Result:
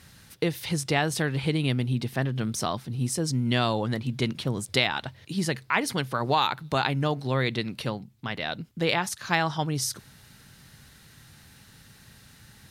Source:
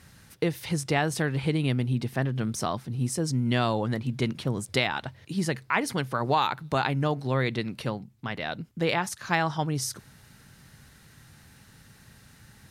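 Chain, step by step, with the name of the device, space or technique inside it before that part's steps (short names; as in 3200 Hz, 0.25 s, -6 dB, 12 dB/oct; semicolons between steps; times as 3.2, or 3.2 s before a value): presence and air boost (bell 3700 Hz +4.5 dB 1.1 oct; high shelf 11000 Hz +5 dB)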